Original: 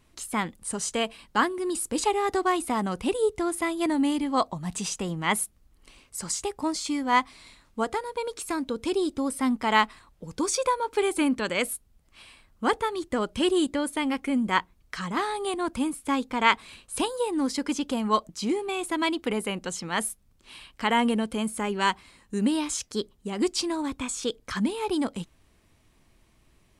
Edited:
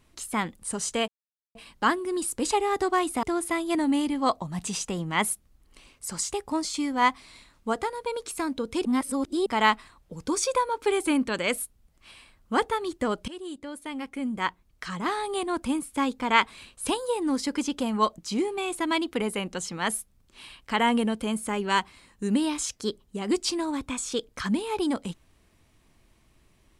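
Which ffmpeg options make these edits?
-filter_complex "[0:a]asplit=6[a][b][c][d][e][f];[a]atrim=end=1.08,asetpts=PTS-STARTPTS,afade=t=out:st=1.076:d=0.004:c=hsin,apad=pad_dur=0.47[g];[b]atrim=start=1.08:end=2.762,asetpts=PTS-STARTPTS,afade=t=in:d=0.004:c=hsin[h];[c]atrim=start=3.338:end=8.962[i];[d]atrim=start=8.958:end=9.572,asetpts=PTS-STARTPTS,areverse[j];[e]atrim=start=9.568:end=13.39,asetpts=PTS-STARTPTS,afade=t=out:st=3.818:d=0.004:c=hsin:silence=0.112202[k];[f]atrim=start=13.39,asetpts=PTS-STARTPTS,afade=t=in:d=1.98:silence=0.112202[l];[g][h]concat=n=2:v=0:a=1[m];[m][i]acrossfade=d=0.004:c1=hsin:c2=hsin[n];[n][j]acrossfade=d=0.004:c1=hsin:c2=hsin[o];[k][l]concat=n=2:v=0:a=1[p];[o][p]acrossfade=d=0.004:c1=hsin:c2=hsin"

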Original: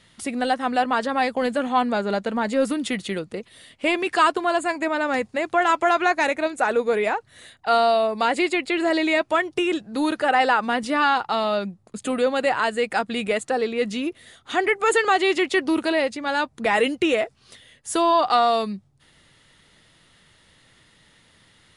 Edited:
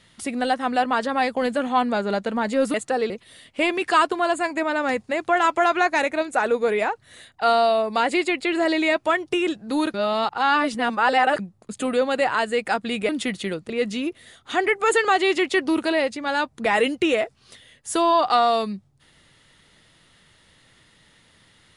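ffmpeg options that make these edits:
-filter_complex "[0:a]asplit=7[a][b][c][d][e][f][g];[a]atrim=end=2.742[h];[b]atrim=start=13.338:end=13.702[i];[c]atrim=start=3.348:end=10.192[j];[d]atrim=start=10.188:end=11.642,asetpts=PTS-STARTPTS,areverse[k];[e]atrim=start=11.638:end=13.342[l];[f]atrim=start=2.738:end=3.352[m];[g]atrim=start=13.698[n];[h][i]acrossfade=d=0.004:c1=hsin:c2=hsin[o];[o][j]acrossfade=d=0.004:c1=hsin:c2=hsin[p];[p][k]acrossfade=d=0.004:c1=hsin:c2=hsin[q];[q][l]acrossfade=d=0.004:c1=hsin:c2=hsin[r];[r][m]acrossfade=d=0.004:c1=hsin:c2=hsin[s];[s][n]acrossfade=d=0.004:c1=hsin:c2=hsin"

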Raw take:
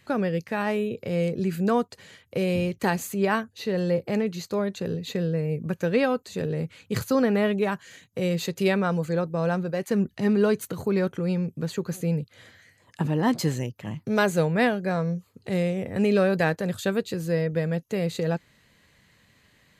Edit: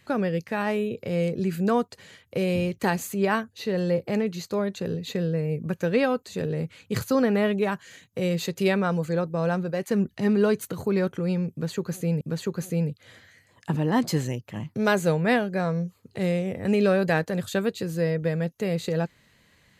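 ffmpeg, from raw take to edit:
-filter_complex "[0:a]asplit=2[a][b];[a]atrim=end=12.212[c];[b]atrim=start=11.518[d];[c][d]acrossfade=d=0.004:c1=hsin:c2=hsin"

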